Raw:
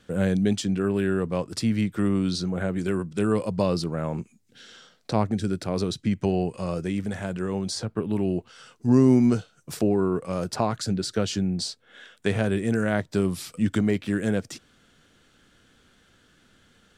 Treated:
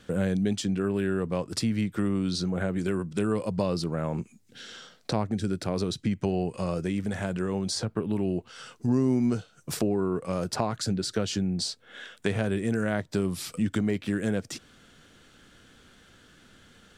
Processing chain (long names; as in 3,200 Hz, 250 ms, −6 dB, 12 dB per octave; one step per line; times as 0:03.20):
downward compressor 2 to 1, threshold −33 dBFS, peak gain reduction 11 dB
level +4 dB